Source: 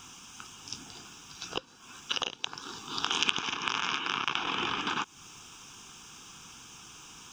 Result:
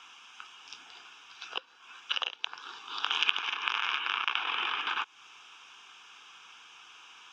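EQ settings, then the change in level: three-band isolator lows -20 dB, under 410 Hz, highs -18 dB, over 3 kHz; peaking EQ 3.4 kHz +12.5 dB 3 oct; -6.5 dB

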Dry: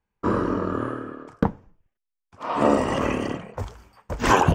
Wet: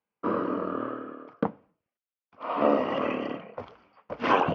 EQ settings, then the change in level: distance through air 180 m; cabinet simulation 290–4500 Hz, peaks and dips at 380 Hz -6 dB, 890 Hz -6 dB, 1.7 kHz -7 dB, 3.8 kHz -5 dB; 0.0 dB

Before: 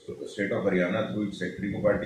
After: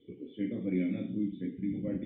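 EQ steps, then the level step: cascade formant filter i; +3.5 dB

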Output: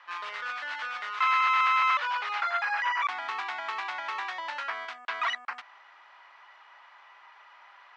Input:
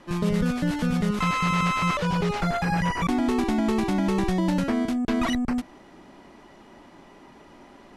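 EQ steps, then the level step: high-pass 1.1 kHz 24 dB/octave; distance through air 100 m; tape spacing loss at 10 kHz 22 dB; +8.0 dB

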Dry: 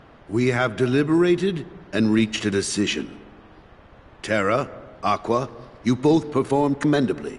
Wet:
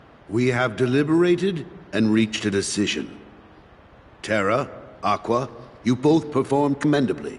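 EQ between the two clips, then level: high-pass 46 Hz; 0.0 dB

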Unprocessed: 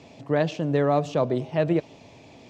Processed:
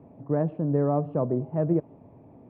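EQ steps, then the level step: low-pass 1.1 kHz 24 dB/octave; bass shelf 110 Hz -7.5 dB; peaking EQ 780 Hz -10 dB 2.6 oct; +5.0 dB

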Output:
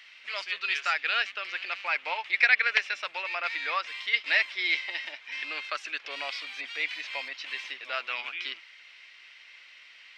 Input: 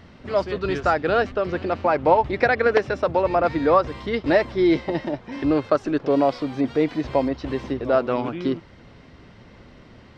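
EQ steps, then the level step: resonant high-pass 2.4 kHz, resonance Q 2.9; +1.0 dB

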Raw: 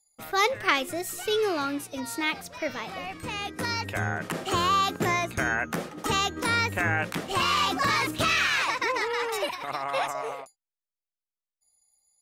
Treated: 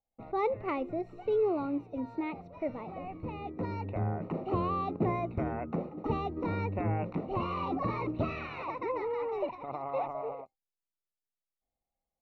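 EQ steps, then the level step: boxcar filter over 27 samples; distance through air 240 m; 0.0 dB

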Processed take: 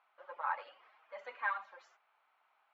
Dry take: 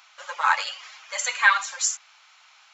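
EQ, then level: band-pass filter 370 Hz, Q 0.77; distance through air 310 m; bass shelf 430 Hz +4 dB; -6.5 dB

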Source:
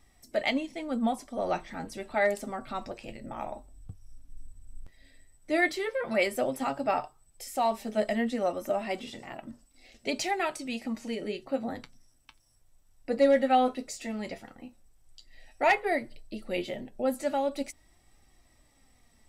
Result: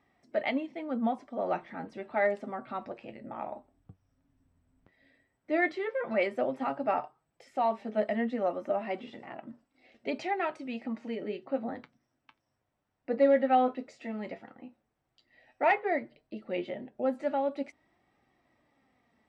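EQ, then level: band-pass 160–2200 Hz; -1.0 dB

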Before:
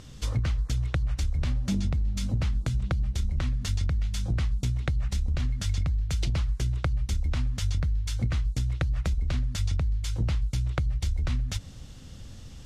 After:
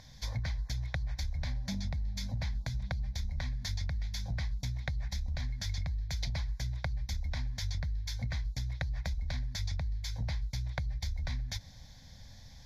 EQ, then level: bass shelf 470 Hz -8 dB; static phaser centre 1.9 kHz, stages 8; 0.0 dB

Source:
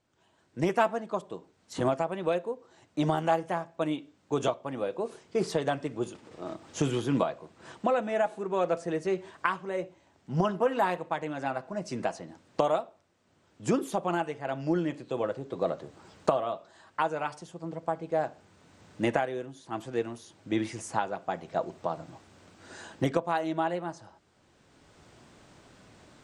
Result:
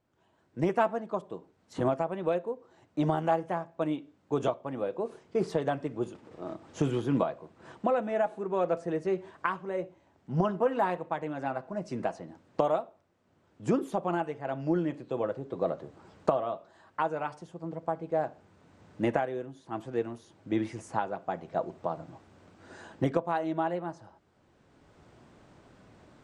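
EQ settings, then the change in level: treble shelf 2.4 kHz -10.5 dB; 0.0 dB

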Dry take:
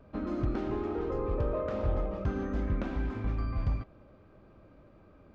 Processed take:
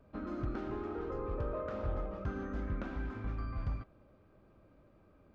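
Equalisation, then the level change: dynamic bell 1.4 kHz, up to +6 dB, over -58 dBFS, Q 2.6; -6.5 dB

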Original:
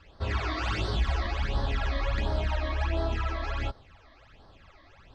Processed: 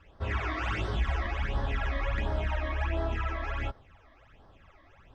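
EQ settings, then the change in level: peaking EQ 4.3 kHz -12.5 dB 0.4 oct; dynamic bell 2 kHz, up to +4 dB, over -48 dBFS, Q 1.3; treble shelf 5.5 kHz -4.5 dB; -2.0 dB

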